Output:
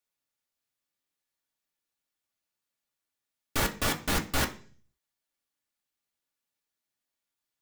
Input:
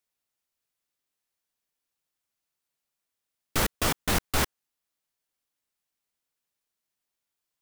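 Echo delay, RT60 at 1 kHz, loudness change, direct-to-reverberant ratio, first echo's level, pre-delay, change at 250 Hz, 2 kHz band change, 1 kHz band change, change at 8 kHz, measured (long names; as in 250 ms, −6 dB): no echo audible, 0.40 s, −2.0 dB, 2.0 dB, no echo audible, 3 ms, −1.0 dB, −0.5 dB, −2.0 dB, −2.5 dB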